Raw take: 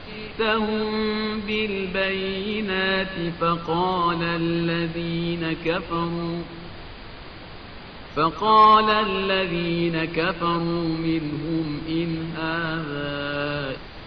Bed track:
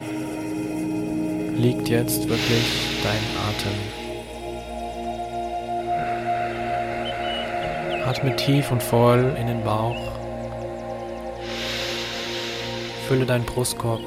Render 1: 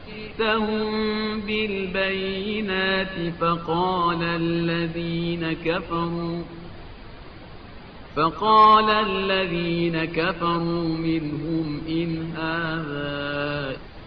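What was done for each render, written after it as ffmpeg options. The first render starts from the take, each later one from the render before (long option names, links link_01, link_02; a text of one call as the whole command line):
ffmpeg -i in.wav -af "afftdn=noise_reduction=7:noise_floor=-40" out.wav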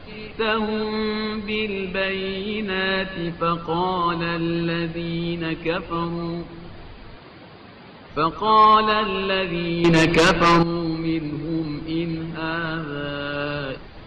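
ffmpeg -i in.wav -filter_complex "[0:a]asettb=1/sr,asplit=3[link_01][link_02][link_03];[link_01]atrim=end=7.174[link_04];[link_02]atrim=start=7.17:end=8.09,asetpts=PTS-STARTPTS,afade=type=in:duration=0.004:curve=qsin,afade=type=out:start_time=0.916:duration=0.004:curve=qsin,highpass=120[link_05];[link_03]atrim=start=8.086[link_06];[link_04][link_05]acrossfade=duration=0.004:curve1=hsin:curve2=qsin[link_07];[link_07][link_06]acrossfade=duration=0.004:curve1=qsin:curve2=hsin,asettb=1/sr,asplit=3[link_08][link_09][link_10];[link_08]atrim=end=9.844[link_11];[link_09]atrim=start=9.84:end=10.63,asetpts=PTS-STARTPTS,afade=type=in:duration=0.004:curve=qsin,afade=type=out:start_time=0.786:duration=0.004:curve=qsin,aeval=exprs='0.299*sin(PI/2*2.51*val(0)/0.299)':channel_layout=same[link_12];[link_10]atrim=start=10.626[link_13];[link_11][link_12]acrossfade=duration=0.004:curve1=hsin:curve2=qsin[link_14];[link_14][link_13]acrossfade=duration=0.004:curve1=qsin:curve2=hsin" out.wav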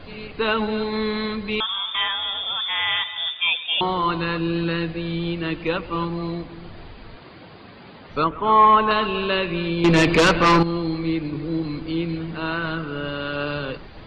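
ffmpeg -i in.wav -filter_complex "[0:a]asettb=1/sr,asplit=3[link_01][link_02][link_03];[link_01]atrim=end=1.604[link_04];[link_02]atrim=start=1.6:end=3.81,asetpts=PTS-STARTPTS,afade=type=in:duration=0.004:curve=qsin,afade=type=out:start_time=2.206:duration=0.004:curve=qsin,lowpass=frequency=3100:width_type=q:width=0.5098,lowpass=frequency=3100:width_type=q:width=0.6013,lowpass=frequency=3100:width_type=q:width=0.9,lowpass=frequency=3100:width_type=q:width=2.563,afreqshift=-3700[link_05];[link_03]atrim=start=3.806[link_06];[link_04][link_05]acrossfade=duration=0.004:curve1=hsin:curve2=qsin[link_07];[link_07][link_06]acrossfade=duration=0.004:curve1=qsin:curve2=hsin,asettb=1/sr,asplit=3[link_08][link_09][link_10];[link_08]atrim=end=8.244[link_11];[link_09]atrim=start=8.24:end=8.91,asetpts=PTS-STARTPTS,afade=type=in:duration=0.004:curve=qsin,afade=type=out:start_time=0.666:duration=0.004:curve=qsin,lowpass=frequency=2700:width=0.5412,lowpass=frequency=2700:width=1.3066[link_12];[link_10]atrim=start=8.906[link_13];[link_11][link_12]acrossfade=duration=0.004:curve1=hsin:curve2=qsin[link_14];[link_14][link_13]acrossfade=duration=0.004:curve1=qsin:curve2=hsin" out.wav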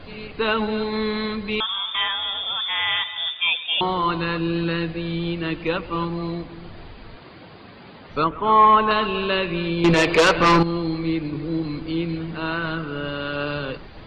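ffmpeg -i in.wav -filter_complex "[0:a]asettb=1/sr,asplit=3[link_01][link_02][link_03];[link_01]atrim=end=9.944[link_04];[link_02]atrim=start=9.94:end=10.38,asetpts=PTS-STARTPTS,afade=type=in:duration=0.004:curve=qsin,afade=type=out:start_time=0.436:duration=0.004:curve=qsin,lowshelf=frequency=340:width_type=q:width=1.5:gain=-6.5[link_05];[link_03]atrim=start=10.376[link_06];[link_04][link_05]acrossfade=duration=0.004:curve1=hsin:curve2=qsin[link_07];[link_07][link_06]acrossfade=duration=0.004:curve1=qsin:curve2=hsin" out.wav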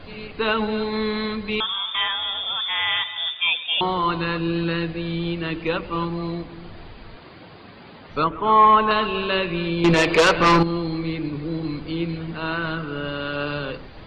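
ffmpeg -i in.wav -af "bandreject=frequency=65.14:width_type=h:width=4,bandreject=frequency=130.28:width_type=h:width=4,bandreject=frequency=195.42:width_type=h:width=4,bandreject=frequency=260.56:width_type=h:width=4,bandreject=frequency=325.7:width_type=h:width=4,bandreject=frequency=390.84:width_type=h:width=4,bandreject=frequency=455.98:width_type=h:width=4,bandreject=frequency=521.12:width_type=h:width=4,bandreject=frequency=586.26:width_type=h:width=4" out.wav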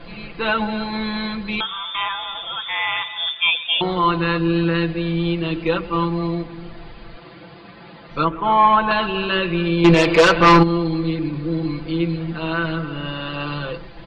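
ffmpeg -i in.wav -af "highshelf=frequency=7100:gain=-6,aecho=1:1:5.9:0.81" out.wav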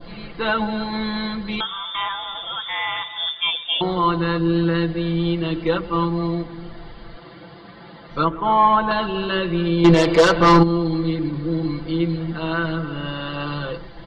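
ffmpeg -i in.wav -af "bandreject=frequency=2500:width=5.1,adynamicequalizer=threshold=0.0316:dfrequency=2000:dqfactor=0.76:tfrequency=2000:tqfactor=0.76:attack=5:release=100:ratio=0.375:range=2.5:mode=cutabove:tftype=bell" out.wav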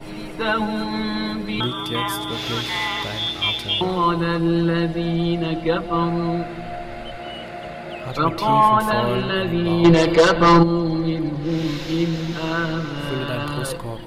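ffmpeg -i in.wav -i bed.wav -filter_complex "[1:a]volume=-7dB[link_01];[0:a][link_01]amix=inputs=2:normalize=0" out.wav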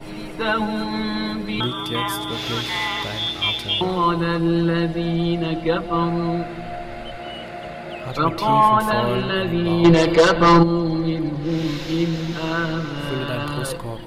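ffmpeg -i in.wav -af anull out.wav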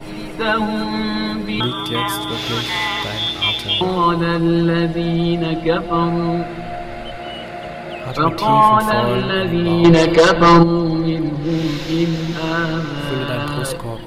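ffmpeg -i in.wav -af "volume=3.5dB,alimiter=limit=-1dB:level=0:latency=1" out.wav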